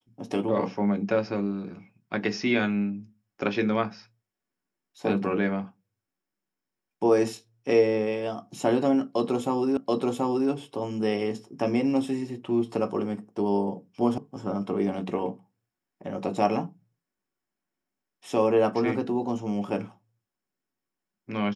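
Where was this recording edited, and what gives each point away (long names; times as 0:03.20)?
0:09.77: the same again, the last 0.73 s
0:14.18: cut off before it has died away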